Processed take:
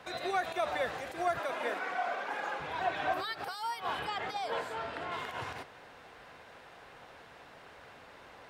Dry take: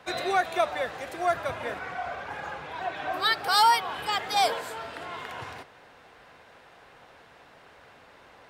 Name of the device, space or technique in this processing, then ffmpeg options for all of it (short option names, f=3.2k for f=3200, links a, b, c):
de-esser from a sidechain: -filter_complex "[0:a]asettb=1/sr,asplit=3[a][b][c];[a]atrim=end=1.394[d];[b]atrim=start=1.39:end=2.6,asetpts=PTS-STARTPTS,afade=t=in:d=0.004:c=qsin,afade=t=out:st=1.206:d=0.004:c=qsin,highpass=f=230:w=0.5412,highpass=f=230:w=1.3066[e];[c]atrim=start=2.596[f];[d][e]acrossfade=d=0.004:c1=hsin:c2=qsin[g];[g][f]acrossfade=d=0.004:c1=qsin:c2=hsin,asettb=1/sr,asplit=3[h][i][j];[h]atrim=end=3.994[k];[i]atrim=start=3.99:end=5.12,asetpts=PTS-STARTPTS,afade=t=in:d=0.004:c=qsin,afade=t=out:st=1.126:d=0.004:c=qsin,aemphasis=mode=reproduction:type=50kf[l];[j]atrim=start=5.116[m];[k][l]acrossfade=d=0.004:c1=hsin:c2=qsin[n];[n][m]acrossfade=d=0.004:c1=qsin:c2=hsin,asplit=2[o][p];[p]highpass=f=5.5k:w=0.5412,highpass=f=5.5k:w=1.3066,apad=whole_len=374772[q];[o][q]sidechaincompress=threshold=-53dB:ratio=4:attack=0.79:release=70"